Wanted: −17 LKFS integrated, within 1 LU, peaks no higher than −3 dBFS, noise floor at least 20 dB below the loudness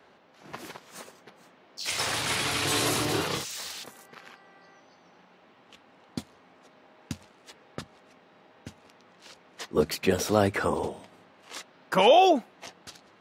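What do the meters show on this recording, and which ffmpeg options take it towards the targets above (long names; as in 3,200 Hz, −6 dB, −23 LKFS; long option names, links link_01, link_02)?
integrated loudness −25.5 LKFS; sample peak −9.0 dBFS; target loudness −17.0 LKFS
→ -af "volume=8.5dB,alimiter=limit=-3dB:level=0:latency=1"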